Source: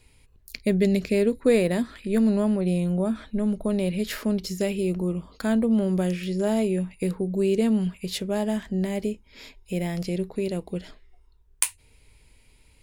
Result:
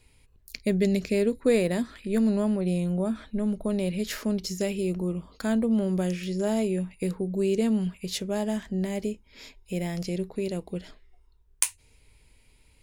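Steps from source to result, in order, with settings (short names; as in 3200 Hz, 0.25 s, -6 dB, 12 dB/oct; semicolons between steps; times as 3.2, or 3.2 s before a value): dynamic EQ 6200 Hz, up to +6 dB, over -56 dBFS, Q 2.2; gain -2.5 dB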